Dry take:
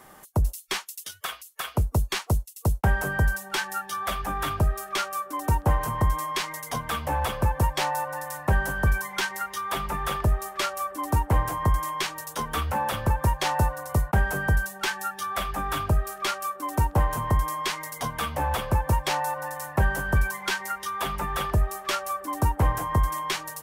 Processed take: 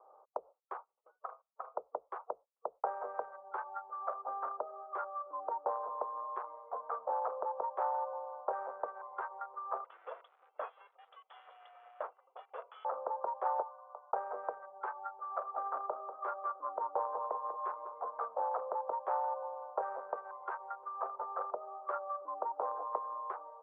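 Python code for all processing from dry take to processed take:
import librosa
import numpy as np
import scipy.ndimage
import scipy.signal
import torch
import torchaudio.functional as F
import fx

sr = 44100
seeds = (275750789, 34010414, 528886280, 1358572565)

y = fx.chain(x, sr, fx.highpass_res(hz=510.0, q=5.7),
    fx.freq_invert(carrier_hz=3900), at=(9.84, 12.85))
y = fx.chain(y, sr, fx.highpass(hz=1200.0, slope=12),
    fx.peak_eq(hz=2600.0, db=-7.5, octaves=0.93),
    fx.doubler(ms=22.0, db=-12), at=(13.62, 14.12))
y = fx.chain(y, sr, fx.low_shelf(hz=88.0, db=-10.0),
    fx.echo_bbd(ms=192, stages=4096, feedback_pct=50, wet_db=-8.0), at=(15.11, 18.22))
y = fx.wiener(y, sr, points=25)
y = scipy.signal.sosfilt(scipy.signal.ellip(3, 1.0, 70, [480.0, 1300.0], 'bandpass', fs=sr, output='sos'), y)
y = y * librosa.db_to_amplitude(-3.5)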